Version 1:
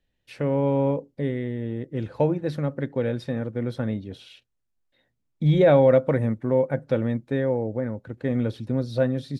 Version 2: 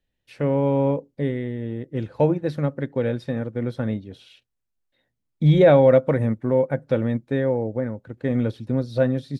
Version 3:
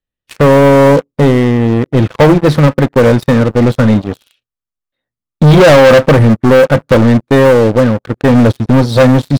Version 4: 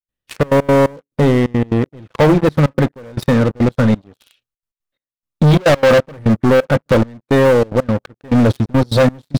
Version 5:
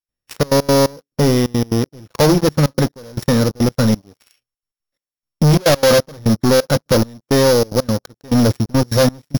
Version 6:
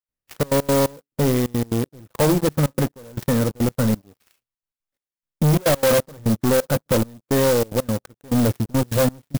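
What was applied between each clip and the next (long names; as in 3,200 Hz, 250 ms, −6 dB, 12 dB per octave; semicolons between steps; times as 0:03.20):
in parallel at +1.5 dB: brickwall limiter −17 dBFS, peak gain reduction 10.5 dB; on the sum: expander for the loud parts 1.5 to 1, over −29 dBFS
parametric band 1,200 Hz +9.5 dB 0.34 octaves; leveller curve on the samples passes 5; level +2.5 dB
brickwall limiter −7 dBFS, peak gain reduction 5.5 dB; gate pattern ".xxxx.x.xx.." 175 BPM −24 dB
samples sorted by size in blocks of 8 samples; level −1.5 dB
converter with an unsteady clock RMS 0.053 ms; level −5 dB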